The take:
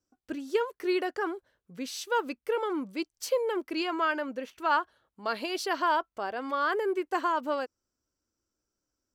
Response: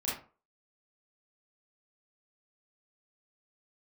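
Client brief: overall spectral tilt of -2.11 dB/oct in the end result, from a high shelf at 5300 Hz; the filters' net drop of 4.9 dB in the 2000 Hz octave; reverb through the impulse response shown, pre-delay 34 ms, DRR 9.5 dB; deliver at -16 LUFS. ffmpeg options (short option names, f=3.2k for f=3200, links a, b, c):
-filter_complex "[0:a]equalizer=f=2k:t=o:g=-8.5,highshelf=f=5.3k:g=7,asplit=2[a][b];[1:a]atrim=start_sample=2205,adelay=34[c];[b][c]afir=irnorm=-1:irlink=0,volume=-14dB[d];[a][d]amix=inputs=2:normalize=0,volume=15.5dB"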